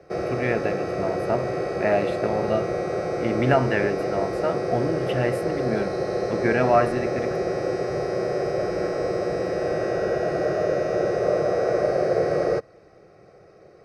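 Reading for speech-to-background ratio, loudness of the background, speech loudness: −0.5 dB, −25.5 LKFS, −26.0 LKFS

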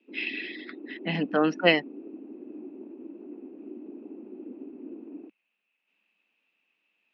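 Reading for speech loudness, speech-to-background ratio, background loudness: −26.5 LKFS, 17.0 dB, −43.5 LKFS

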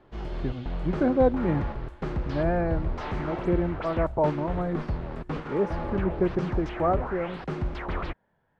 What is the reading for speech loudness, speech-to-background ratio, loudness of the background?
−28.5 LKFS, 5.0 dB, −33.5 LKFS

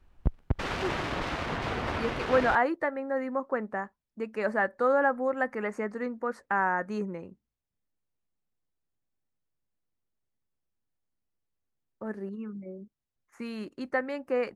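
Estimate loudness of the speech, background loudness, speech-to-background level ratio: −30.5 LKFS, −33.0 LKFS, 2.5 dB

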